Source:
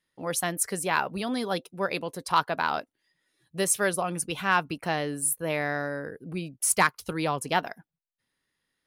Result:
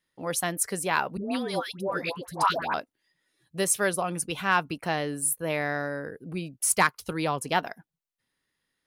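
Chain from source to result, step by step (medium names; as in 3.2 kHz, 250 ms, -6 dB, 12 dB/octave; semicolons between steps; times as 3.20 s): 1.17–2.74 s: phase dispersion highs, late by 146 ms, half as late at 850 Hz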